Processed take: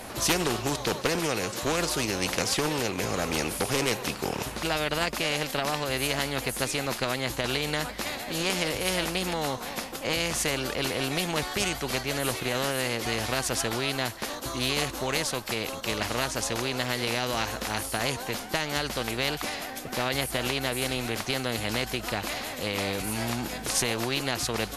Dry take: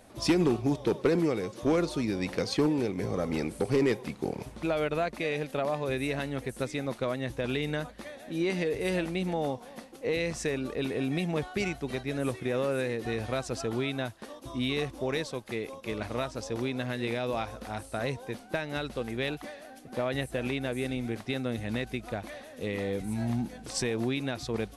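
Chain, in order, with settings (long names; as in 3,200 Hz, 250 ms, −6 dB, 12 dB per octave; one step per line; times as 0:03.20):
formants moved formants +2 semitones
every bin compressed towards the loudest bin 2 to 1
level +4.5 dB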